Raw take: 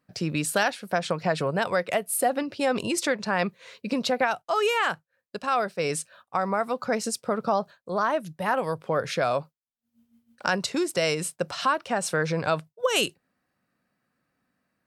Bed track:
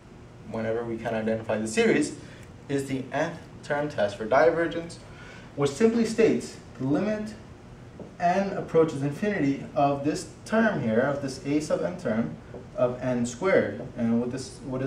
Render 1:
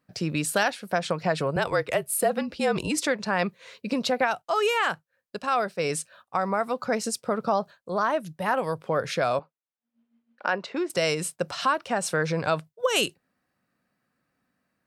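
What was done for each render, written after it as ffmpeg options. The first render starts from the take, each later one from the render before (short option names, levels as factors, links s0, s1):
-filter_complex "[0:a]asettb=1/sr,asplit=3[s0][s1][s2];[s0]atrim=end=1.564[s3];[s1]atrim=start=1.56:end=3.03,asetpts=PTS-STARTPTS,afade=t=in:d=0.004:c=qsin,afade=t=out:st=1.466:d=0.004:c=qsin,afreqshift=-41[s4];[s2]atrim=start=3.026[s5];[s3][s4]acrossfade=d=0.004:c1=hsin:c2=qsin[s6];[s6][s5]acrossfade=d=0.004:c1=qsin:c2=hsin,asettb=1/sr,asplit=3[s7][s8][s9];[s7]atrim=end=9.394[s10];[s8]atrim=start=9.39:end=10.9,asetpts=PTS-STARTPTS,afade=t=in:d=0.004:c=qsin,afade=t=out:st=1.506:d=0.004:c=qsin,highpass=300,lowpass=2500[s11];[s9]atrim=start=10.896[s12];[s10][s11]acrossfade=d=0.004:c1=hsin:c2=qsin[s13];[s13][s12]acrossfade=d=0.004:c1=qsin:c2=hsin"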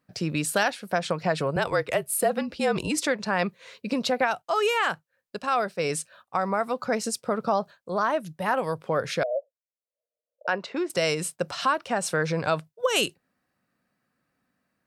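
-filter_complex "[0:a]asettb=1/sr,asplit=3[s0][s1][s2];[s0]atrim=end=9.234[s3];[s1]atrim=start=9.23:end=10.48,asetpts=PTS-STARTPTS,afade=t=in:d=0.004:c=qsin,afade=t=out:st=1.246:d=0.004:c=qsin,asuperpass=centerf=560:order=8:qfactor=2.9[s4];[s2]atrim=start=10.476[s5];[s3][s4]acrossfade=d=0.004:c1=hsin:c2=qsin[s6];[s6][s5]acrossfade=d=0.004:c1=qsin:c2=hsin"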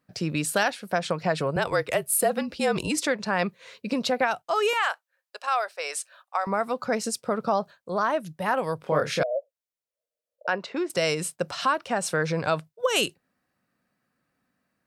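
-filter_complex "[0:a]asettb=1/sr,asplit=3[s0][s1][s2];[s0]atrim=end=1.714[s3];[s1]atrim=start=1.71:end=2.96,asetpts=PTS-STARTPTS,afade=t=in:d=0.004:c=qsin,afade=t=out:st=1.246:d=0.004:c=qsin,highshelf=f=4900:g=4.5[s4];[s2]atrim=start=2.956[s5];[s3][s4]acrossfade=d=0.004:c1=hsin:c2=qsin[s6];[s6][s5]acrossfade=d=0.004:c1=qsin:c2=hsin,asettb=1/sr,asplit=3[s7][s8][s9];[s7]atrim=end=4.734[s10];[s8]atrim=start=4.73:end=6.47,asetpts=PTS-STARTPTS,afade=t=in:d=0.004:c=qsin,afade=t=out:st=1.736:d=0.004:c=qsin,highpass=f=600:w=0.5412,highpass=f=600:w=1.3066[s11];[s9]atrim=start=6.466[s12];[s10][s11]acrossfade=d=0.004:c1=hsin:c2=qsin[s13];[s13][s12]acrossfade=d=0.004:c1=qsin:c2=hsin,asettb=1/sr,asplit=3[s14][s15][s16];[s14]atrim=end=8.804[s17];[s15]atrim=start=8.8:end=9.23,asetpts=PTS-STARTPTS,afade=t=in:d=0.004:c=qsin,afade=t=out:st=0.426:d=0.004:c=qsin,asplit=2[s18][s19];[s19]adelay=27,volume=0.794[s20];[s18][s20]amix=inputs=2:normalize=0,atrim=end_sample=18963[s21];[s16]atrim=start=9.226[s22];[s17][s21]acrossfade=d=0.004:c1=hsin:c2=qsin[s23];[s23][s22]acrossfade=d=0.004:c1=qsin:c2=hsin"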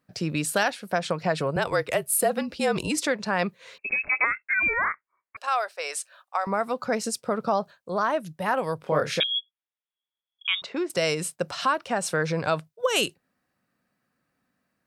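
-filter_complex "[0:a]asettb=1/sr,asplit=3[s0][s1][s2];[s0]atrim=end=3.784[s3];[s1]atrim=start=3.78:end=5.37,asetpts=PTS-STARTPTS,afade=t=in:d=0.004:c=qsin,afade=t=out:st=1.586:d=0.004:c=qsin,lowpass=f=2400:t=q:w=0.5098,lowpass=f=2400:t=q:w=0.6013,lowpass=f=2400:t=q:w=0.9,lowpass=f=2400:t=q:w=2.563,afreqshift=-2800[s4];[s2]atrim=start=5.366[s5];[s3][s4]acrossfade=d=0.004:c1=hsin:c2=qsin[s6];[s6][s5]acrossfade=d=0.004:c1=qsin:c2=hsin,asettb=1/sr,asplit=3[s7][s8][s9];[s7]atrim=end=9.204[s10];[s8]atrim=start=9.2:end=10.62,asetpts=PTS-STARTPTS,afade=t=in:d=0.004:c=qsin,afade=t=out:st=1.416:d=0.004:c=qsin,lowpass=f=3300:t=q:w=0.5098,lowpass=f=3300:t=q:w=0.6013,lowpass=f=3300:t=q:w=0.9,lowpass=f=3300:t=q:w=2.563,afreqshift=-3900[s11];[s9]atrim=start=10.616[s12];[s10][s11]acrossfade=d=0.004:c1=hsin:c2=qsin[s13];[s13][s12]acrossfade=d=0.004:c1=qsin:c2=hsin"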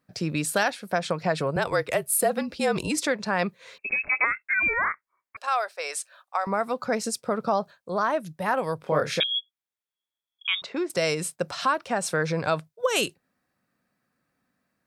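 -af "bandreject=f=2900:w=19"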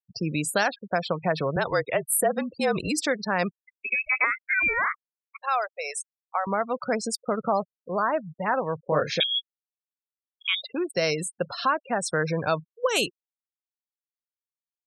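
-af "afftfilt=real='re*gte(hypot(re,im),0.0282)':imag='im*gte(hypot(re,im),0.0282)':win_size=1024:overlap=0.75,adynamicequalizer=threshold=0.00316:dfrequency=4400:dqfactor=3.7:tfrequency=4400:tqfactor=3.7:attack=5:release=100:ratio=0.375:range=2:mode=boostabove:tftype=bell"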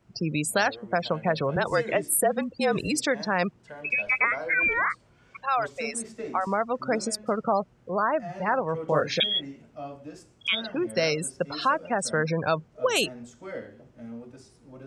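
-filter_complex "[1:a]volume=0.168[s0];[0:a][s0]amix=inputs=2:normalize=0"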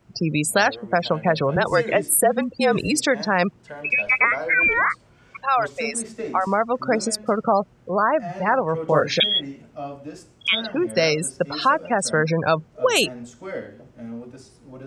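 -af "volume=1.88"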